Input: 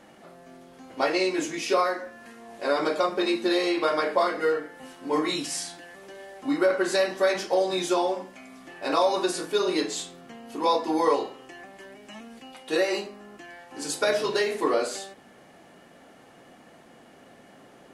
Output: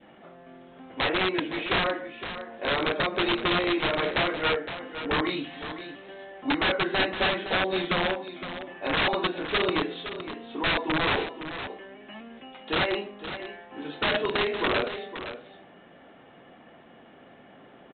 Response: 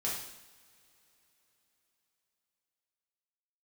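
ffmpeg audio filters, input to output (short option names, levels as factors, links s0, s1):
-af "adynamicequalizer=threshold=0.01:dfrequency=1100:dqfactor=1.3:tfrequency=1100:tqfactor=1.3:attack=5:release=100:ratio=0.375:range=2:mode=cutabove:tftype=bell,aresample=8000,aeval=exprs='(mod(8.91*val(0)+1,2)-1)/8.91':c=same,aresample=44100,aecho=1:1:514:0.282"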